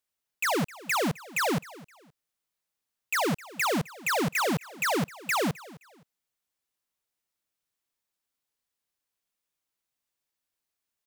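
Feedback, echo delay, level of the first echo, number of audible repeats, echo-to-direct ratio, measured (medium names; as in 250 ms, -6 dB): 28%, 260 ms, -20.0 dB, 2, -19.5 dB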